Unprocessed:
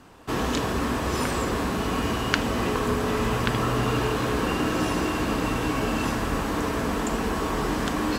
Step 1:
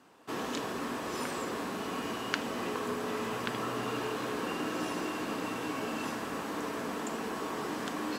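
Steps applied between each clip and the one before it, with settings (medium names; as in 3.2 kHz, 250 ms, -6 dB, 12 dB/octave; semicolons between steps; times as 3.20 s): high-pass 210 Hz 12 dB/octave; trim -8.5 dB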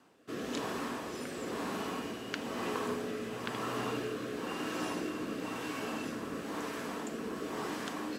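rotary cabinet horn 1 Hz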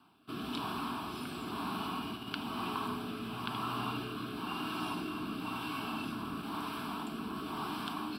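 in parallel at -2.5 dB: level held to a coarse grid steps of 14 dB; on the sum: static phaser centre 1.9 kHz, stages 6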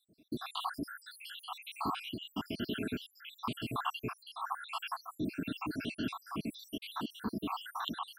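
random holes in the spectrogram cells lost 81%; trim +6 dB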